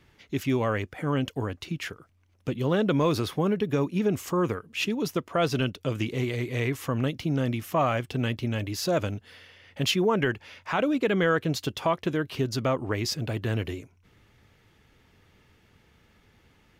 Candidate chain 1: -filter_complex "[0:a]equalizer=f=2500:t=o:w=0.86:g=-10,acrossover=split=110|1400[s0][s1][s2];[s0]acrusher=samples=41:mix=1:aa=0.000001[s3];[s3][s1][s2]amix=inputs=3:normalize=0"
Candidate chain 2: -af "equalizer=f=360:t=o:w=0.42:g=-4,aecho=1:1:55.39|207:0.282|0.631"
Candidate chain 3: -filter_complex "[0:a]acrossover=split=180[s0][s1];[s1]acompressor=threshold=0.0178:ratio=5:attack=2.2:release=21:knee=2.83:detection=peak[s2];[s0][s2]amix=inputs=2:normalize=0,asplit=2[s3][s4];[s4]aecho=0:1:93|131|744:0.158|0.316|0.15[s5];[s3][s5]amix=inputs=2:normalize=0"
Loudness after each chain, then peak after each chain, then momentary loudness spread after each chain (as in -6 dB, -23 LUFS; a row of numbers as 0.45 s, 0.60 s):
-28.5 LUFS, -26.5 LUFS, -32.5 LUFS; -12.5 dBFS, -10.5 dBFS, -18.0 dBFS; 9 LU, 10 LU, 9 LU